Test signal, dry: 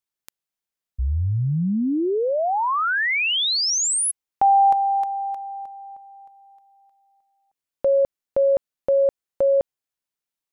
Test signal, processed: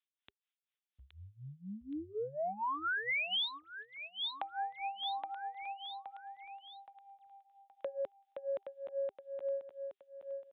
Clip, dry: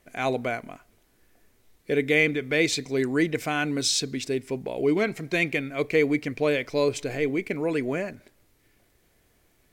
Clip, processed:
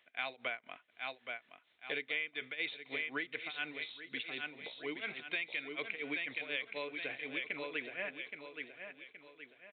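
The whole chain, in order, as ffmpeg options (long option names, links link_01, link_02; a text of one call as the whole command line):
ffmpeg -i in.wav -filter_complex "[0:a]acrossover=split=360[link_01][link_02];[link_02]acompressor=threshold=-24dB:ratio=6:attack=26:release=36:knee=2.83:detection=peak[link_03];[link_01][link_03]amix=inputs=2:normalize=0,aderivative,asplit=2[link_04][link_05];[link_05]asoftclip=type=hard:threshold=-30.5dB,volume=-9dB[link_06];[link_04][link_06]amix=inputs=2:normalize=0,tremolo=f=4.1:d=0.93,aecho=1:1:821|1642|2463|3284:0.376|0.147|0.0572|0.0223,acompressor=threshold=-41dB:ratio=8:attack=11:release=165:knee=1:detection=rms,aresample=8000,aresample=44100,highpass=50,bandreject=frequency=400:width=12,volume=8.5dB" out.wav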